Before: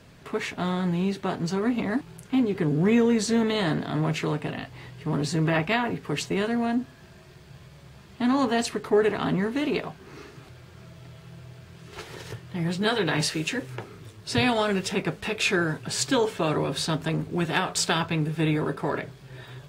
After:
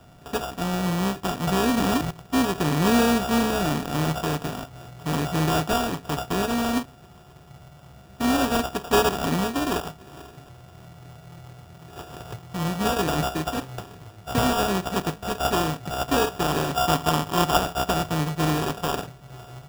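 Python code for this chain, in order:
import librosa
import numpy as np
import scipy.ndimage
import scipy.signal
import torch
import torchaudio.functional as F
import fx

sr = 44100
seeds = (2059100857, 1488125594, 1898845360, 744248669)

y = np.r_[np.sort(x[:len(x) // 32 * 32].reshape(-1, 32), axis=1).ravel(), x[len(x) // 32 * 32:]]
y = fx.peak_eq(y, sr, hz=1200.0, db=9.0, octaves=1.8, at=(16.74, 17.57))
y = fx.sample_hold(y, sr, seeds[0], rate_hz=2100.0, jitter_pct=0)
y = fx.env_flatten(y, sr, amount_pct=70, at=(1.47, 2.11))
y = y * 10.0 ** (1.0 / 20.0)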